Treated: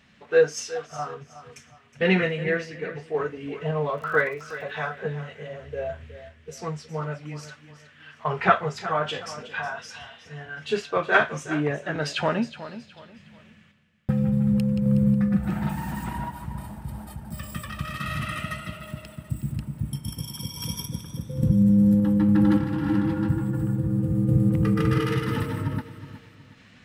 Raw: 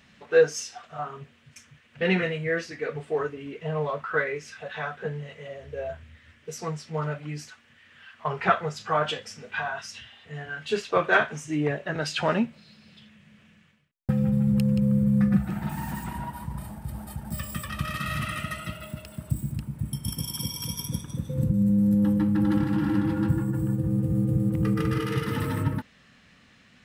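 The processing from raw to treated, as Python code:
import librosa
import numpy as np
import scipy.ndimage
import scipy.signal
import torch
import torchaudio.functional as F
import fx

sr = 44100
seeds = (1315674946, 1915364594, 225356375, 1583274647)

y = fx.high_shelf(x, sr, hz=7000.0, db=-5.0)
y = fx.dmg_crackle(y, sr, seeds[0], per_s=74.0, level_db=-37.0, at=(3.94, 4.61), fade=0.02)
y = fx.tremolo_random(y, sr, seeds[1], hz=3.5, depth_pct=55)
y = fx.echo_feedback(y, sr, ms=367, feedback_pct=33, wet_db=-14.0)
y = y * librosa.db_to_amplitude(4.0)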